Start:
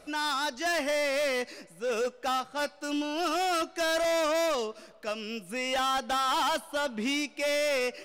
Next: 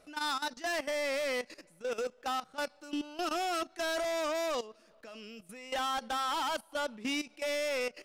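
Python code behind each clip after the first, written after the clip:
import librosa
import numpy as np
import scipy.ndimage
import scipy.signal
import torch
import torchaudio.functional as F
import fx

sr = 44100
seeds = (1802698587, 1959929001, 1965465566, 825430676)

y = fx.level_steps(x, sr, step_db=15)
y = y * librosa.db_to_amplitude(-2.5)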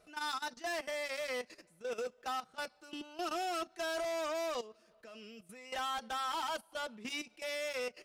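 y = fx.notch_comb(x, sr, f0_hz=280.0)
y = y * librosa.db_to_amplitude(-3.0)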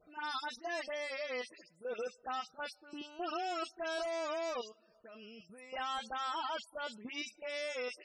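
y = fx.dispersion(x, sr, late='highs', ms=96.0, hz=2900.0)
y = fx.spec_topn(y, sr, count=64)
y = y * librosa.db_to_amplitude(-1.0)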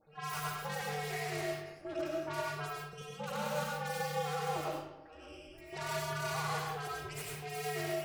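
y = fx.tracing_dist(x, sr, depth_ms=0.32)
y = y * np.sin(2.0 * np.pi * 150.0 * np.arange(len(y)) / sr)
y = fx.rev_freeverb(y, sr, rt60_s=0.99, hf_ratio=0.65, predelay_ms=55, drr_db=-3.0)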